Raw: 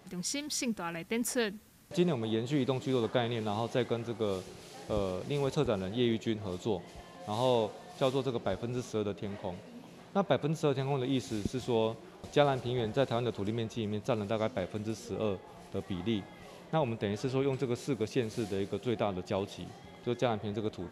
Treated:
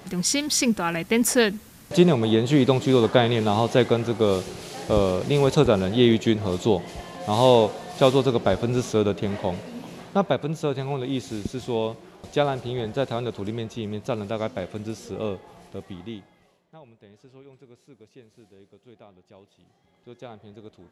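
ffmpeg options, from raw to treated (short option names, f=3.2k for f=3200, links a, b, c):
-af "volume=20.5dB,afade=t=out:st=9.93:d=0.45:silence=0.398107,afade=t=out:st=15.39:d=0.83:silence=0.316228,afade=t=out:st=16.22:d=0.39:silence=0.251189,afade=t=in:st=19.52:d=0.89:silence=0.375837"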